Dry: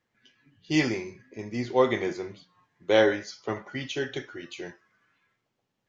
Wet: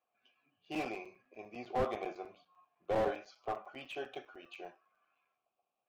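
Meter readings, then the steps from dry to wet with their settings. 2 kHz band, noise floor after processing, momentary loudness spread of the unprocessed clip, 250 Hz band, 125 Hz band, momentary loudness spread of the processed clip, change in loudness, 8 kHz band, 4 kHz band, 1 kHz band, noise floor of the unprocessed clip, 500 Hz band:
−15.0 dB, below −85 dBFS, 19 LU, −15.0 dB, −14.5 dB, 18 LU, −12.0 dB, can't be measured, −16.5 dB, −5.5 dB, −80 dBFS, −12.0 dB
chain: formant filter a
regular buffer underruns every 0.10 s, samples 256, zero
slew-rate limiting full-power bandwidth 12 Hz
level +5.5 dB

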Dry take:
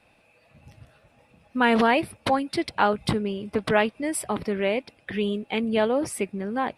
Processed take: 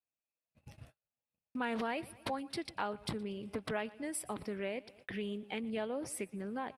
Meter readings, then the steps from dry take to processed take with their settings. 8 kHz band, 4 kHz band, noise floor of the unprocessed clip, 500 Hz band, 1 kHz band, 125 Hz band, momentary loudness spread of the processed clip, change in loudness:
−9.5 dB, −13.5 dB, −62 dBFS, −15.0 dB, −16.0 dB, −13.5 dB, 7 LU, −14.5 dB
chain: on a send: repeating echo 118 ms, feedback 41%, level −23 dB
on the sum: noise gate −50 dBFS, range −39 dB
high-shelf EQ 6,700 Hz +6 dB
downward compressor 2 to 1, threshold −40 dBFS, peak gain reduction 13.5 dB
highs frequency-modulated by the lows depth 0.18 ms
level −4 dB

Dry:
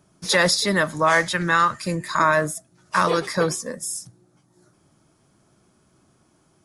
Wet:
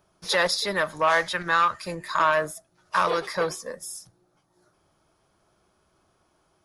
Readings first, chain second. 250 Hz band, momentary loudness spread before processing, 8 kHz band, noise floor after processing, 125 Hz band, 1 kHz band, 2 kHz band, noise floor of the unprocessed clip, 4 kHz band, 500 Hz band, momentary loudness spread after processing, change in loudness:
−10.5 dB, 11 LU, −8.5 dB, −68 dBFS, −12.0 dB, −2.5 dB, −4.0 dB, −62 dBFS, −4.0 dB, −3.5 dB, 14 LU, −3.5 dB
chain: graphic EQ with 10 bands 125 Hz −10 dB, 250 Hz −11 dB, 2,000 Hz −3 dB, 8,000 Hz −11 dB
saturating transformer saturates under 1,000 Hz

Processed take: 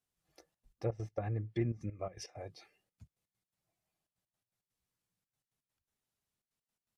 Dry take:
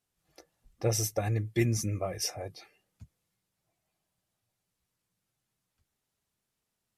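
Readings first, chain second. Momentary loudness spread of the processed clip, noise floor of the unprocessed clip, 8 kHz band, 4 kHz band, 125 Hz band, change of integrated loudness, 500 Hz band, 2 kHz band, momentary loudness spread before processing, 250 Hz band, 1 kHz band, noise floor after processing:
13 LU, −84 dBFS, −22.0 dB, −16.0 dB, −7.5 dB, −8.5 dB, −7.0 dB, −12.5 dB, 6 LU, −7.0 dB, −7.0 dB, below −85 dBFS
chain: gate pattern "xxxxxx.x.x.x." 166 BPM −12 dB
treble cut that deepens with the level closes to 1,300 Hz, closed at −26 dBFS
level −6.5 dB

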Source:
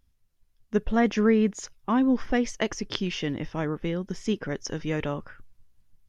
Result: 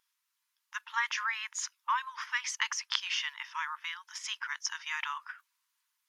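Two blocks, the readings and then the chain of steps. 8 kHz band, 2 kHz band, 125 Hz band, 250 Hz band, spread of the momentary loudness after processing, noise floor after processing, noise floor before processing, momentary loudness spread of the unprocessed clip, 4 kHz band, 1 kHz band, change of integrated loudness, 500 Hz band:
can't be measured, +2.0 dB, below −40 dB, below −40 dB, 9 LU, −83 dBFS, −67 dBFS, 9 LU, +2.0 dB, −1.5 dB, −7.0 dB, below −40 dB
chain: linear-phase brick-wall high-pass 880 Hz
in parallel at 0 dB: output level in coarse steps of 23 dB

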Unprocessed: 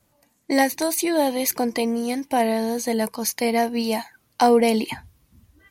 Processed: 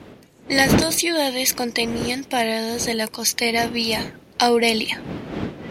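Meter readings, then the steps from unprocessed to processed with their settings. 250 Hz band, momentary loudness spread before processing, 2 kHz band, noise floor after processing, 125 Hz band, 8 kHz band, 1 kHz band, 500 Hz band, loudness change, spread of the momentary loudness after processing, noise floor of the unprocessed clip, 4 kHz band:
−0.5 dB, 8 LU, +7.0 dB, −50 dBFS, can't be measured, +5.0 dB, −1.0 dB, −1.0 dB, +1.5 dB, 12 LU, −66 dBFS, +10.0 dB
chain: wind on the microphone 290 Hz −25 dBFS
meter weighting curve D
level −1 dB

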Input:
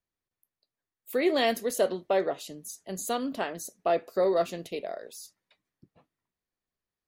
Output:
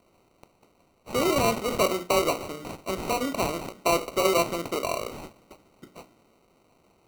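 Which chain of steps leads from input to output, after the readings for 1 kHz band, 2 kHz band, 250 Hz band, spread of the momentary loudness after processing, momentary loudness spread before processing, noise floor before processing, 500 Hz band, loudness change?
+5.0 dB, +4.5 dB, +3.0 dB, 10 LU, 14 LU, below −85 dBFS, +1.0 dB, +2.5 dB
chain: compressor on every frequency bin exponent 0.6
mains-hum notches 60/120/180/240/300/360/420/480/540/600 Hz
decimation without filtering 26×

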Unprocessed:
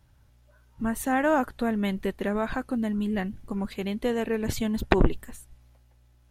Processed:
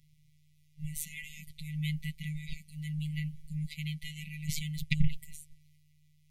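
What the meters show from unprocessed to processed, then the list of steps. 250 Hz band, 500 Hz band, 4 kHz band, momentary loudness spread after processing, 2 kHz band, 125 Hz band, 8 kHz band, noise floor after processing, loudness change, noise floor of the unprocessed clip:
−13.5 dB, below −40 dB, −2.0 dB, 13 LU, −10.0 dB, +0.5 dB, −2.0 dB, −65 dBFS, −10.0 dB, −60 dBFS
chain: phases set to zero 152 Hz
linear-phase brick-wall band-stop 210–1,900 Hz

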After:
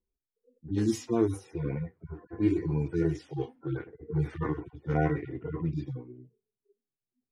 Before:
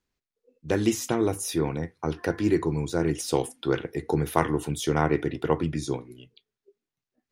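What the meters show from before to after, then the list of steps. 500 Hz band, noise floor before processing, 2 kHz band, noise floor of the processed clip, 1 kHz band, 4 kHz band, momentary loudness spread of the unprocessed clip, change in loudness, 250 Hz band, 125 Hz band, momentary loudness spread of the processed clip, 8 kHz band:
−7.0 dB, below −85 dBFS, −9.0 dB, below −85 dBFS, −10.0 dB, below −10 dB, 6 LU, −4.5 dB, −3.5 dB, −1.5 dB, 11 LU, below −10 dB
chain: harmonic-percussive split with one part muted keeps harmonic
low-pass that shuts in the quiet parts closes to 510 Hz, open at −22.5 dBFS

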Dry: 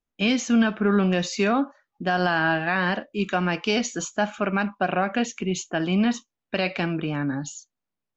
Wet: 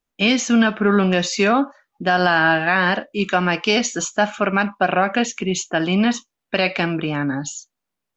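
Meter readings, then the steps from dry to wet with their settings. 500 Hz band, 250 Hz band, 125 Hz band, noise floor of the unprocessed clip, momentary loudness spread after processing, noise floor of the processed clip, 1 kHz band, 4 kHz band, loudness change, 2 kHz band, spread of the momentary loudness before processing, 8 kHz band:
+5.5 dB, +3.5 dB, +3.0 dB, −85 dBFS, 8 LU, −82 dBFS, +6.5 dB, +7.0 dB, +5.5 dB, +7.0 dB, 8 LU, can't be measured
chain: low-shelf EQ 330 Hz −5 dB
level +7 dB

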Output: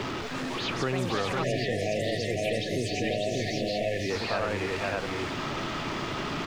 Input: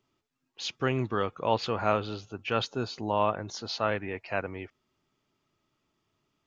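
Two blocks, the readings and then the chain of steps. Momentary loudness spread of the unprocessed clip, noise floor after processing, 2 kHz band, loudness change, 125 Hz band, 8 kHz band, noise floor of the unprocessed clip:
10 LU, −34 dBFS, +5.0 dB, +1.0 dB, +3.5 dB, can't be measured, −79 dBFS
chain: converter with a step at zero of −31.5 dBFS
high-frequency loss of the air 150 metres
on a send: multi-tap delay 502/593 ms −5/−3 dB
on the sum: bit reduction 11 bits
delay with pitch and tempo change per echo 344 ms, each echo +6 semitones, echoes 2, each echo −6 dB
in parallel at +3 dB: brickwall limiter −20 dBFS, peak gain reduction 9 dB
on the sum: low-shelf EQ 180 Hz −3 dB
time-frequency box erased 0:01.43–0:04.10, 740–1,700 Hz
multiband upward and downward compressor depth 70%
level −7.5 dB

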